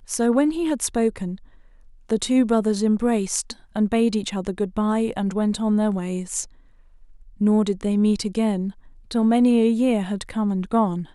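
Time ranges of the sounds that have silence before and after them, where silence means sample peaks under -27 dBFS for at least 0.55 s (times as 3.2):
2.09–6.44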